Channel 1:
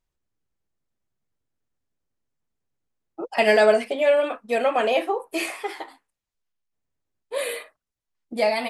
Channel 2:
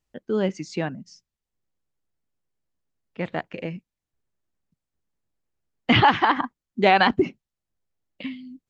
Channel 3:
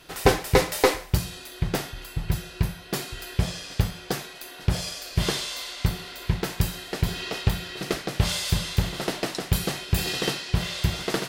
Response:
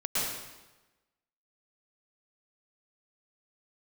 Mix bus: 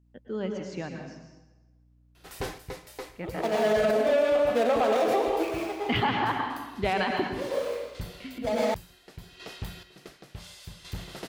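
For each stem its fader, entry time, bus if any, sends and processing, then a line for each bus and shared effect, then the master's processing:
+2.5 dB, 0.05 s, send -10.5 dB, no echo send, median filter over 25 samples; Chebyshev high-pass 190 Hz, order 8; auto duck -21 dB, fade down 0.75 s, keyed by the second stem
-11.5 dB, 0.00 s, send -9 dB, no echo send, hum 60 Hz, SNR 27 dB
-10.5 dB, 2.15 s, no send, echo send -20.5 dB, square tremolo 0.69 Hz, depth 65%, duty 30%; saturation -16.5 dBFS, distortion -11 dB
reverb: on, RT60 1.1 s, pre-delay 103 ms
echo: delay 151 ms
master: peak limiter -16 dBFS, peak gain reduction 10 dB

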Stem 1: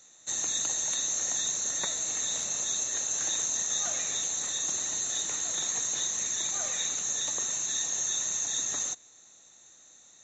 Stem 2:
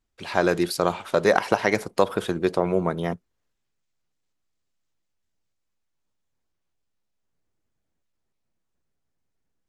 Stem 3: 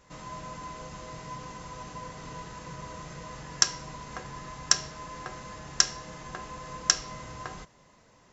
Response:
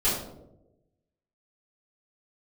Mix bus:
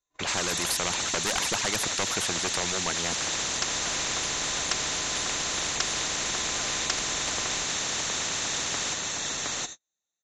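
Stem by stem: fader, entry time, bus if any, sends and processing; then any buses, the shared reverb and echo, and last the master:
-3.5 dB, 0.00 s, no send, echo send -4 dB, peaking EQ 3.8 kHz +6 dB 1.9 oct
+3.0 dB, 0.00 s, no send, no echo send, saturation -16.5 dBFS, distortion -9 dB; reverb removal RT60 1.6 s; level-controlled noise filter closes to 2.6 kHz, open at -21.5 dBFS
-8.0 dB, 0.00 s, no send, no echo send, bass shelf 110 Hz -6.5 dB; comb 2.8 ms, depth 98%; auto duck -15 dB, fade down 1.95 s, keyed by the second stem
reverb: none
echo: delay 716 ms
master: gate -45 dBFS, range -47 dB; treble shelf 5.5 kHz -9 dB; spectrum-flattening compressor 4:1

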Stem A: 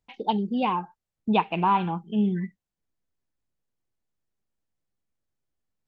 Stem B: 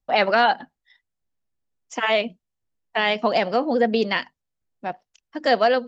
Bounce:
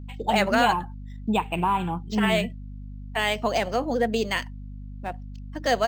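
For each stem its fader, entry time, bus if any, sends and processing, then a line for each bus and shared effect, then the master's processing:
0.0 dB, 0.00 s, no send, compression 3:1, threshold -20 dBFS, peak gain reduction 4 dB
-4.5 dB, 0.20 s, no send, none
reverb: none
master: treble shelf 3.6 kHz +9 dB; hum 50 Hz, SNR 12 dB; decimation joined by straight lines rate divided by 4×

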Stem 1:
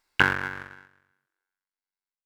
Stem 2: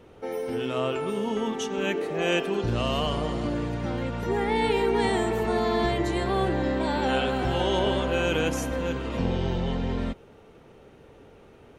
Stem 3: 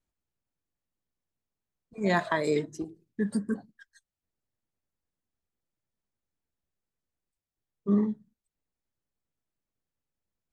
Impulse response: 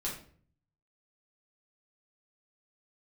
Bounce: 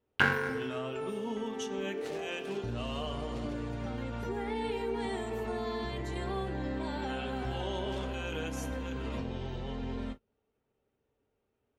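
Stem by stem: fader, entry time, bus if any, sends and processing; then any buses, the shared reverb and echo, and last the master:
-7.5 dB, 0.00 s, no bus, send -5 dB, none
0.0 dB, 0.00 s, bus A, send -23 dB, none
-2.5 dB, 0.00 s, bus A, no send, spectral gate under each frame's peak -10 dB weak; elliptic low-pass 720 Hz; delay time shaken by noise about 2.5 kHz, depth 0.31 ms
bus A: 0.0 dB, compression 6:1, threshold -34 dBFS, peak gain reduction 13.5 dB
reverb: on, RT60 0.50 s, pre-delay 5 ms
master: gate -39 dBFS, range -28 dB; comb of notches 170 Hz

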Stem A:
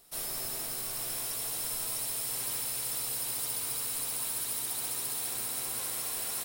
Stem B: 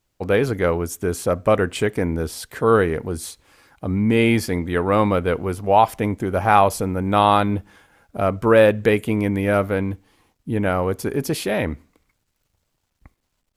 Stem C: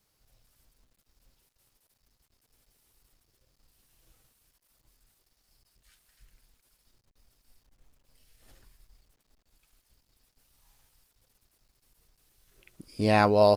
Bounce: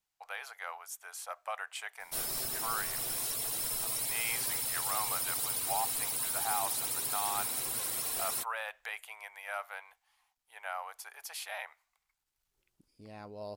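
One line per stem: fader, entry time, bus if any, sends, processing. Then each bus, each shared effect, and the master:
+1.5 dB, 2.00 s, no bus, no send, reverb removal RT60 0.65 s
-9.5 dB, 0.00 s, bus A, no send, elliptic high-pass 750 Hz, stop band 60 dB
-18.5 dB, 0.00 s, bus A, no send, auto duck -8 dB, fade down 0.20 s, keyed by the second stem
bus A: 0.0 dB, peaking EQ 1.7 kHz -3 dB 2.9 oct; peak limiter -25.5 dBFS, peak gain reduction 10 dB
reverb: none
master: none

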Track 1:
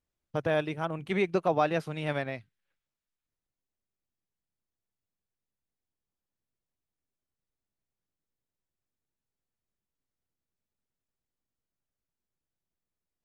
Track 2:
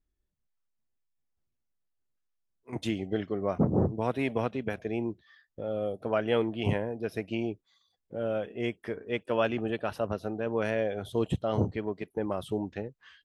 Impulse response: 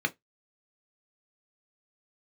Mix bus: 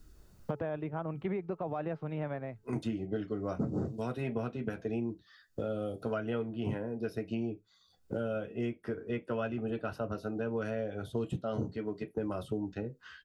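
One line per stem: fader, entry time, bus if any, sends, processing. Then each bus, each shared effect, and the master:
-7.0 dB, 0.15 s, no send, low-pass 1.2 kHz 12 dB/octave; de-hum 430.4 Hz, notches 3; peak limiter -22.5 dBFS, peak gain reduction 8.5 dB; auto duck -7 dB, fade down 0.60 s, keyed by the second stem
-5.5 dB, 0.00 s, send -10.5 dB, none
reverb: on, RT60 0.15 s, pre-delay 3 ms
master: three bands compressed up and down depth 100%

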